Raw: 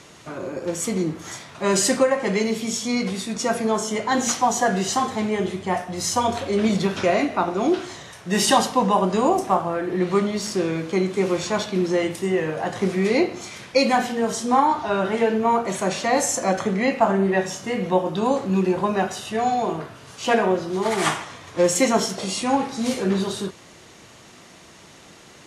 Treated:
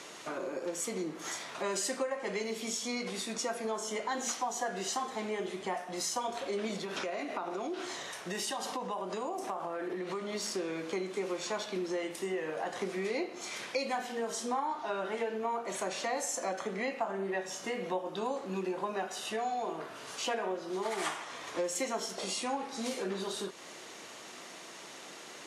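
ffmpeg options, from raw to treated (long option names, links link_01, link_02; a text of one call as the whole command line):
ffmpeg -i in.wav -filter_complex "[0:a]asettb=1/sr,asplit=3[link_01][link_02][link_03];[link_01]atrim=end=6.794[link_04];[link_02]atrim=start=6.79:end=10.35,asetpts=PTS-STARTPTS,afade=type=in:duration=0.004:curve=qsin,afade=type=out:start_time=3.556:duration=0.004:curve=qsin,acompressor=threshold=-24dB:ratio=6:attack=3.2:release=140:knee=1:detection=peak[link_05];[link_03]atrim=start=10.346[link_06];[link_04][link_05]acrossfade=duration=0.004:curve1=hsin:curve2=qsin[link_07];[link_07][link_06]acrossfade=duration=0.004:curve1=qsin:curve2=hsin,highpass=320,acompressor=threshold=-36dB:ratio=3" out.wav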